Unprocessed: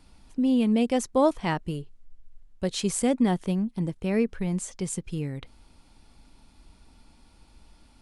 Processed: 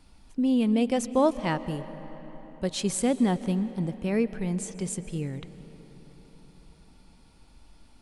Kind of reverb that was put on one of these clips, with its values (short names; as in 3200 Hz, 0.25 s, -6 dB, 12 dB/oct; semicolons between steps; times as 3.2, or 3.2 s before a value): digital reverb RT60 4.8 s, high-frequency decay 0.6×, pre-delay 95 ms, DRR 13.5 dB; gain -1 dB